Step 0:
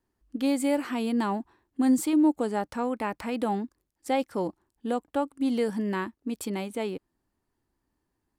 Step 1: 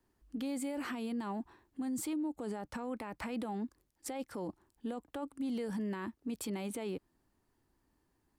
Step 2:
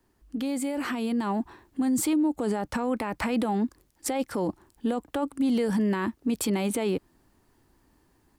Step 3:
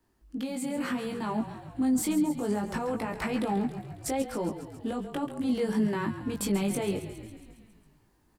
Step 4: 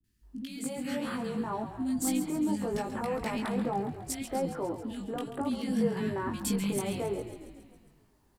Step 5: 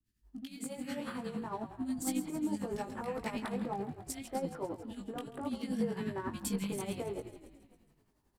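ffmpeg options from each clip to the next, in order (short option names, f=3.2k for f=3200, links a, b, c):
-filter_complex "[0:a]acrossover=split=130[a][b];[b]acompressor=threshold=-32dB:ratio=4[c];[a][c]amix=inputs=2:normalize=0,alimiter=level_in=9.5dB:limit=-24dB:level=0:latency=1:release=18,volume=-9.5dB,volume=2.5dB"
-af "dynaudnorm=f=760:g=3:m=4.5dB,volume=7.5dB"
-filter_complex "[0:a]asplit=2[a][b];[b]asplit=8[c][d][e][f][g][h][i][j];[c]adelay=137,afreqshift=-33,volume=-11.5dB[k];[d]adelay=274,afreqshift=-66,volume=-15.2dB[l];[e]adelay=411,afreqshift=-99,volume=-19dB[m];[f]adelay=548,afreqshift=-132,volume=-22.7dB[n];[g]adelay=685,afreqshift=-165,volume=-26.5dB[o];[h]adelay=822,afreqshift=-198,volume=-30.2dB[p];[i]adelay=959,afreqshift=-231,volume=-34dB[q];[j]adelay=1096,afreqshift=-264,volume=-37.7dB[r];[k][l][m][n][o][p][q][r]amix=inputs=8:normalize=0[s];[a][s]amix=inputs=2:normalize=0,flanger=delay=18:depth=2.4:speed=0.67"
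-filter_complex "[0:a]acrossover=split=260|1800[a][b][c];[c]adelay=40[d];[b]adelay=230[e];[a][e][d]amix=inputs=3:normalize=0"
-filter_complex "[0:a]tremolo=f=11:d=0.55,asplit=2[a][b];[b]aeval=exprs='sgn(val(0))*max(abs(val(0))-0.00562,0)':c=same,volume=-10dB[c];[a][c]amix=inputs=2:normalize=0,volume=-5dB"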